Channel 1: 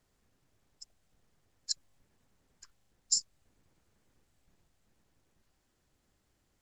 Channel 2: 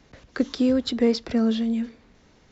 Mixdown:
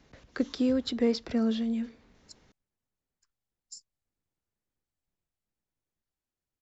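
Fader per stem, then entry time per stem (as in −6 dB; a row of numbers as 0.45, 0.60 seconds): −18.0, −5.5 decibels; 0.60, 0.00 seconds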